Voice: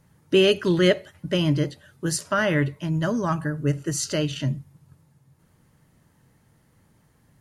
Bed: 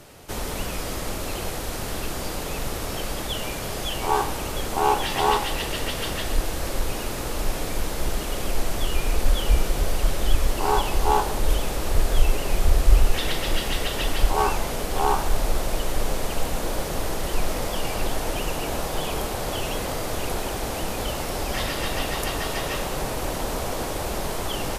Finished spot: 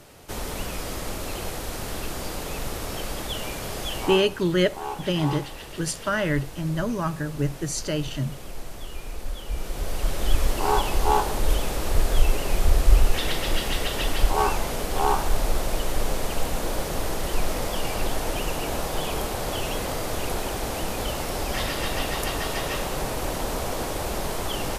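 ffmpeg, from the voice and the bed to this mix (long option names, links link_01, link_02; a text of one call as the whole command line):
ffmpeg -i stem1.wav -i stem2.wav -filter_complex "[0:a]adelay=3750,volume=-2.5dB[link_01];[1:a]volume=9.5dB,afade=type=out:start_time=4:duration=0.22:silence=0.316228,afade=type=in:start_time=9.48:duration=0.92:silence=0.266073[link_02];[link_01][link_02]amix=inputs=2:normalize=0" out.wav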